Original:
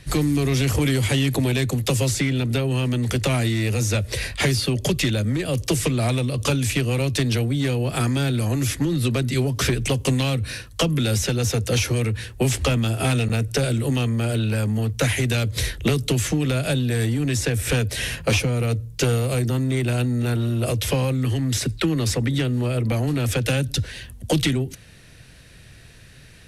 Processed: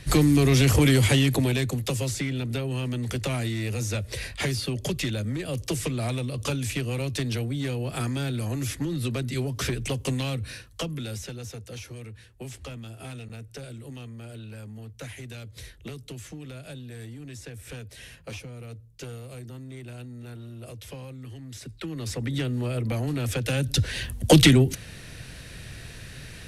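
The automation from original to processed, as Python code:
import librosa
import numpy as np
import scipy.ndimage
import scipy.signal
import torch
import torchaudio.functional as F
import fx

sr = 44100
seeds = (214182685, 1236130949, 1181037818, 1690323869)

y = fx.gain(x, sr, db=fx.line((1.01, 1.5), (1.96, -7.0), (10.43, -7.0), (11.71, -18.5), (21.53, -18.5), (22.38, -5.5), (23.49, -5.5), (24.02, 5.5)))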